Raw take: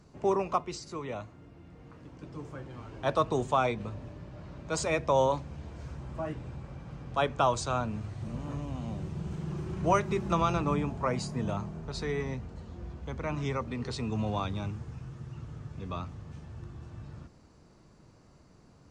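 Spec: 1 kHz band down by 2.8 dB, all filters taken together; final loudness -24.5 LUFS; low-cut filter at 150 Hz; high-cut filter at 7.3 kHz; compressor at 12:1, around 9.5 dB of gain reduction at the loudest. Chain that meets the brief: high-pass 150 Hz; low-pass 7.3 kHz; peaking EQ 1 kHz -3.5 dB; compression 12:1, threshold -32 dBFS; trim +15.5 dB

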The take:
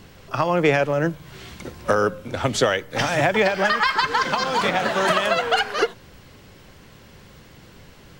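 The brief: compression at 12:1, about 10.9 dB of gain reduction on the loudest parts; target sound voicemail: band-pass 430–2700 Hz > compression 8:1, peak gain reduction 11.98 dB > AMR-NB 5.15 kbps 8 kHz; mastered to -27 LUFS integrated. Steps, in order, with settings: compression 12:1, threshold -25 dBFS; band-pass 430–2700 Hz; compression 8:1, threshold -36 dBFS; trim +16 dB; AMR-NB 5.15 kbps 8 kHz

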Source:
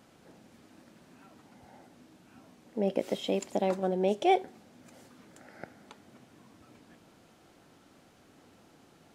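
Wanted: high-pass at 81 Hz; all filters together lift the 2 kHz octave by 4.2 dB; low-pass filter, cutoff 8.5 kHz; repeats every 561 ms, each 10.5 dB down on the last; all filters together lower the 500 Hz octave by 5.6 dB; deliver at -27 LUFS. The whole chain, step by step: high-pass 81 Hz; low-pass 8.5 kHz; peaking EQ 500 Hz -8 dB; peaking EQ 2 kHz +5.5 dB; feedback delay 561 ms, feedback 30%, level -10.5 dB; trim +7.5 dB

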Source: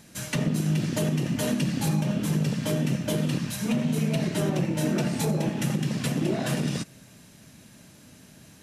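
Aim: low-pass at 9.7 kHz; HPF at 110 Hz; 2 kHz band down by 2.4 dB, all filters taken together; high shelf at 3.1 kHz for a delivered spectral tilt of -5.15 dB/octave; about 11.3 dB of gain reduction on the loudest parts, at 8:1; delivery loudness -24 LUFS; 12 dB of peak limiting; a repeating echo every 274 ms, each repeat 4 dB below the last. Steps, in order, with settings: high-pass 110 Hz; low-pass 9.7 kHz; peaking EQ 2 kHz -4.5 dB; treble shelf 3.1 kHz +3.5 dB; compression 8:1, threshold -34 dBFS; peak limiter -33 dBFS; feedback delay 274 ms, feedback 63%, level -4 dB; trim +16 dB

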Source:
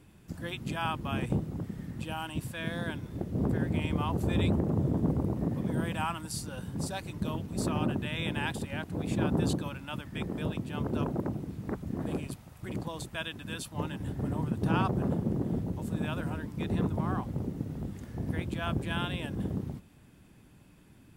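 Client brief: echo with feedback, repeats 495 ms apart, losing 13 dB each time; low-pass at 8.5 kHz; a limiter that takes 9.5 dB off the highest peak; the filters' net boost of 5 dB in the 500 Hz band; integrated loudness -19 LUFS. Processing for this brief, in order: low-pass 8.5 kHz; peaking EQ 500 Hz +6.5 dB; peak limiter -21 dBFS; feedback delay 495 ms, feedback 22%, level -13 dB; trim +14 dB

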